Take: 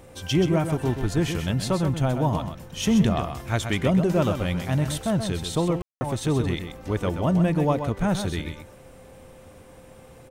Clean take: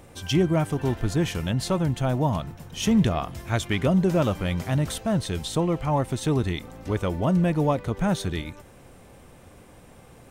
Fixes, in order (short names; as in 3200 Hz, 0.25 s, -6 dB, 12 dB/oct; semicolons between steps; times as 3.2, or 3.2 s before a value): notch 520 Hz, Q 30; room tone fill 5.82–6.01; inverse comb 0.129 s -8 dB